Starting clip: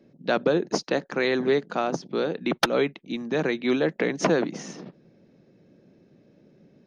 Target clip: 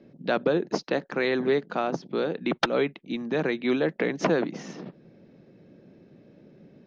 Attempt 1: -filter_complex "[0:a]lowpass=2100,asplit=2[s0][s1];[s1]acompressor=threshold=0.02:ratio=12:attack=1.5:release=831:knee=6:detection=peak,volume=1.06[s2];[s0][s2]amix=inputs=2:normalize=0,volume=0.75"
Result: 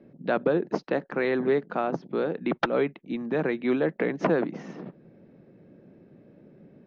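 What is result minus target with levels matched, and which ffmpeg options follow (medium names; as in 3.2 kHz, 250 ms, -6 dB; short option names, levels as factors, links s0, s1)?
4 kHz band -8.0 dB
-filter_complex "[0:a]lowpass=4500,asplit=2[s0][s1];[s1]acompressor=threshold=0.02:ratio=12:attack=1.5:release=831:knee=6:detection=peak,volume=1.06[s2];[s0][s2]amix=inputs=2:normalize=0,volume=0.75"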